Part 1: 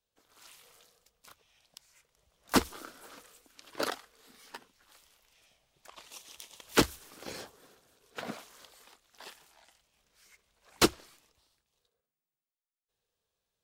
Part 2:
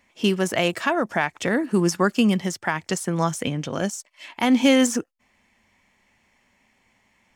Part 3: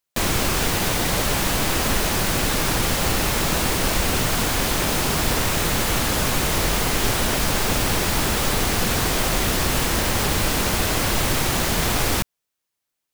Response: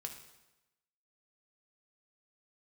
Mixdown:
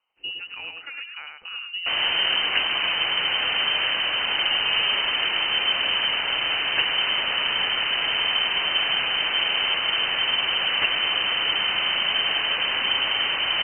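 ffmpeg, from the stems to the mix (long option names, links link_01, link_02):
-filter_complex "[0:a]volume=-1dB[link_01];[1:a]lowshelf=frequency=440:gain=7.5,volume=-18dB,asplit=2[link_02][link_03];[link_03]volume=-4dB[link_04];[2:a]adelay=1700,volume=-2.5dB,asplit=2[link_05][link_06];[link_06]volume=-6.5dB[link_07];[link_04][link_07]amix=inputs=2:normalize=0,aecho=0:1:105|210|315:1|0.16|0.0256[link_08];[link_01][link_02][link_05][link_08]amix=inputs=4:normalize=0,lowpass=frequency=2600:width_type=q:width=0.5098,lowpass=frequency=2600:width_type=q:width=0.6013,lowpass=frequency=2600:width_type=q:width=0.9,lowpass=frequency=2600:width_type=q:width=2.563,afreqshift=-3100"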